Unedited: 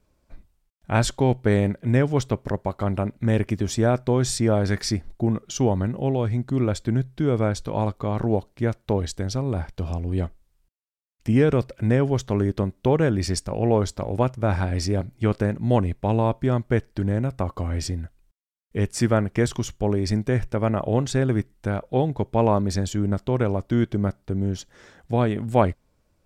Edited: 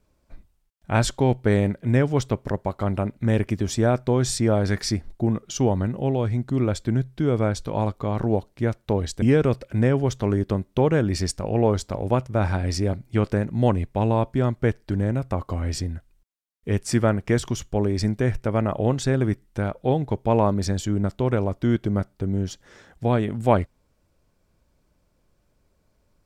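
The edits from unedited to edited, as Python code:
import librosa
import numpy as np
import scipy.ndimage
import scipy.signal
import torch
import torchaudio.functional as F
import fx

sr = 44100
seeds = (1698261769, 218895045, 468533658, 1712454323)

y = fx.edit(x, sr, fx.cut(start_s=9.22, length_s=2.08), tone=tone)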